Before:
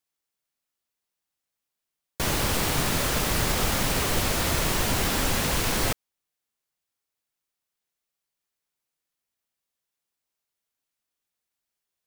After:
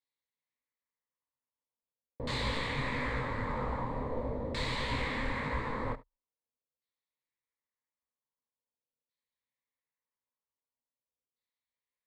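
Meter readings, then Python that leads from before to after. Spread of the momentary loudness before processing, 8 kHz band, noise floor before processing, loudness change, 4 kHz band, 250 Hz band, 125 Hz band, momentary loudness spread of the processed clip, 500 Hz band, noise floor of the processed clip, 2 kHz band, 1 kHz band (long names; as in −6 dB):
2 LU, −28.0 dB, below −85 dBFS, −10.5 dB, −13.0 dB, −8.5 dB, −8.5 dB, 4 LU, −7.0 dB, below −85 dBFS, −7.5 dB, −7.0 dB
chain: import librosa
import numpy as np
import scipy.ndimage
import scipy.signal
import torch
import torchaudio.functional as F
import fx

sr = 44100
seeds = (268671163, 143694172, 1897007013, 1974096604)

y = fx.ripple_eq(x, sr, per_octave=1.0, db=11)
y = y + 10.0 ** (-19.0 / 20.0) * np.pad(y, (int(73 * sr / 1000.0), 0))[:len(y)]
y = fx.filter_lfo_lowpass(y, sr, shape='saw_down', hz=0.44, low_hz=510.0, high_hz=4100.0, q=1.5)
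y = fx.detune_double(y, sr, cents=56)
y = y * 10.0 ** (-6.5 / 20.0)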